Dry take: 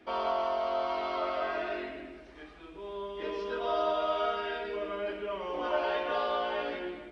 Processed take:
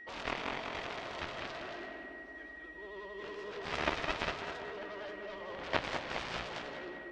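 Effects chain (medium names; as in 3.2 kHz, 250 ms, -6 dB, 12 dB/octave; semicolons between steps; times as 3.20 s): vibrato 11 Hz 82 cents; whistle 1.9 kHz -41 dBFS; Chebyshev shaper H 3 -8 dB, 6 -34 dB, 8 -38 dB, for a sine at -17 dBFS; on a send: tape echo 201 ms, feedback 69%, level -5.5 dB, low-pass 1.9 kHz; on the sum: trim +7.5 dB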